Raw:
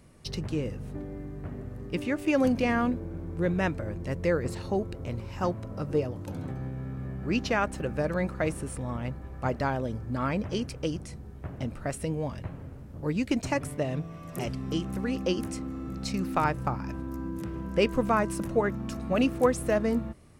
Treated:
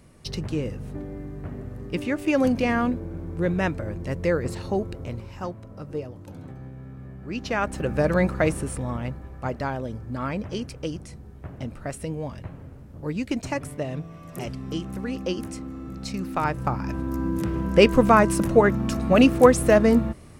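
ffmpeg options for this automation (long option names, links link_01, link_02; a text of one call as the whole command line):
ffmpeg -i in.wav -af "volume=24.5dB,afade=type=out:start_time=4.92:duration=0.57:silence=0.421697,afade=type=in:start_time=7.34:duration=0.82:silence=0.237137,afade=type=out:start_time=8.16:duration=1.24:silence=0.398107,afade=type=in:start_time=16.37:duration=0.95:silence=0.354813" out.wav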